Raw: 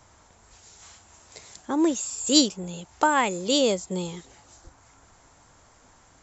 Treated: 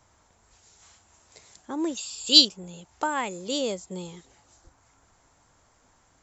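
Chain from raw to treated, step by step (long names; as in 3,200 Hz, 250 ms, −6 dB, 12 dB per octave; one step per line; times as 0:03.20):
0:01.97–0:02.45: flat-topped bell 3,600 Hz +14 dB 1.1 octaves
level −6.5 dB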